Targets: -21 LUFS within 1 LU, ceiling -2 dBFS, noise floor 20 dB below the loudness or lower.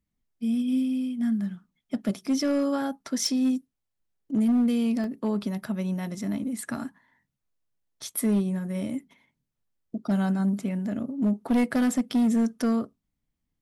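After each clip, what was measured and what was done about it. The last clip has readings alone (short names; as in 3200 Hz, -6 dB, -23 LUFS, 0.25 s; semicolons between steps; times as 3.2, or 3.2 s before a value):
clipped 1.2%; flat tops at -18.5 dBFS; dropouts 1; longest dropout 1.5 ms; loudness -27.0 LUFS; peak -18.5 dBFS; loudness target -21.0 LUFS
-> clip repair -18.5 dBFS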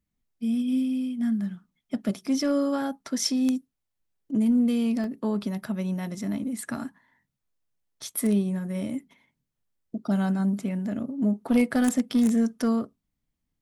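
clipped 0.0%; dropouts 1; longest dropout 1.5 ms
-> interpolate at 5.04, 1.5 ms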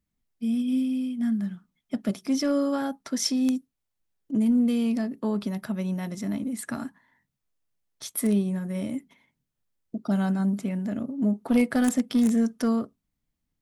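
dropouts 0; loudness -27.0 LUFS; peak -9.5 dBFS; loudness target -21.0 LUFS
-> gain +6 dB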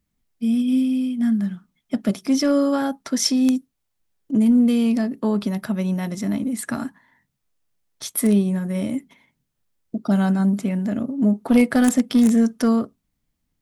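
loudness -21.0 LUFS; peak -3.5 dBFS; noise floor -76 dBFS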